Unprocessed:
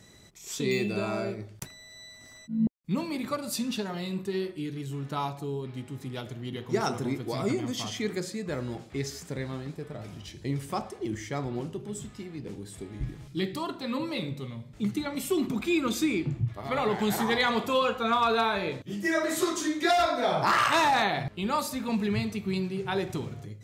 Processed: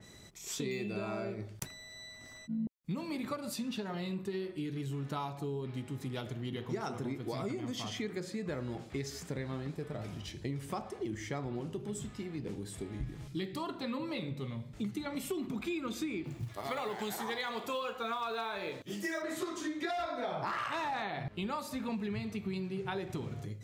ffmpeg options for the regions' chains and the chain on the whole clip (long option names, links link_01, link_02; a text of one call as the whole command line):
ffmpeg -i in.wav -filter_complex "[0:a]asettb=1/sr,asplit=3[link_01][link_02][link_03];[link_01]atrim=end=16.244[link_04];[link_02]atrim=start=16.24:end=19.22,asetpts=PTS-STARTPTS,afade=type=in:duration=0.004:curve=qsin,afade=type=out:start_time=2.976:duration=0.004:curve=qsin,bass=frequency=250:gain=-9,treble=frequency=4000:gain=8,acrusher=bits=6:mode=log:mix=0:aa=0.000001[link_05];[link_03]atrim=start=19.216[link_06];[link_04][link_05]acrossfade=duration=0.004:curve1=hsin:curve2=qsin[link_07];[link_07][link_06]acrossfade=duration=0.004:curve1=qsin:curve2=hsin,acompressor=threshold=-34dB:ratio=6,adynamicequalizer=threshold=0.00158:dfrequency=4100:dqfactor=0.7:tfrequency=4100:tqfactor=0.7:attack=5:release=100:ratio=0.375:range=4:mode=cutabove:tftype=highshelf" out.wav